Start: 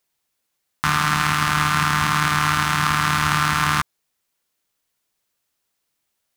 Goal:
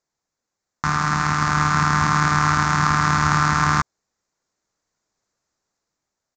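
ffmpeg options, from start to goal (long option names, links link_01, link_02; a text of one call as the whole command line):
ffmpeg -i in.wav -af "equalizer=frequency=3000:width_type=o:width=0.93:gain=-15,dynaudnorm=framelen=390:gausssize=7:maxgain=8dB,aresample=16000,aresample=44100" out.wav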